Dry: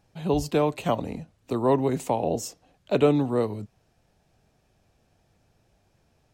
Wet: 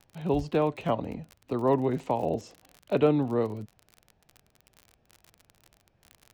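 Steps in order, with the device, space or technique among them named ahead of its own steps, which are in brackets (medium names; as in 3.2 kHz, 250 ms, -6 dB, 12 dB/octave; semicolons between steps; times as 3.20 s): lo-fi chain (low-pass 3.2 kHz 12 dB/octave; wow and flutter; crackle 40 per s -34 dBFS); trim -2.5 dB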